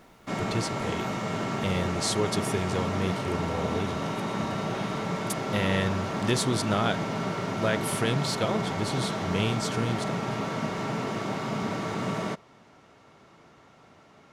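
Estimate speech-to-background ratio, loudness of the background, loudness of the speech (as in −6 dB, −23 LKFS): 0.5 dB, −31.0 LKFS, −30.5 LKFS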